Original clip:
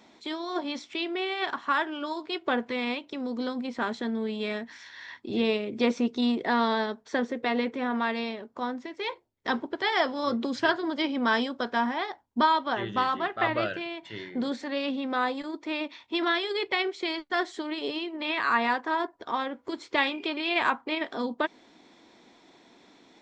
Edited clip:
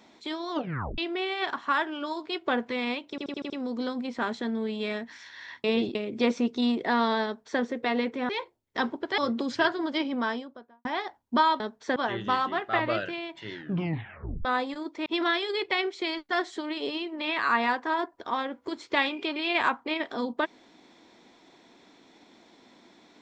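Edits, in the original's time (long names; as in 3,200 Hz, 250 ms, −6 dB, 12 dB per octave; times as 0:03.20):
0:00.51: tape stop 0.47 s
0:03.10: stutter 0.08 s, 6 plays
0:05.24–0:05.55: reverse
0:06.85–0:07.21: duplicate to 0:12.64
0:07.89–0:08.99: remove
0:09.88–0:10.22: remove
0:10.94–0:11.89: fade out and dull
0:14.19: tape stop 0.94 s
0:15.74–0:16.07: remove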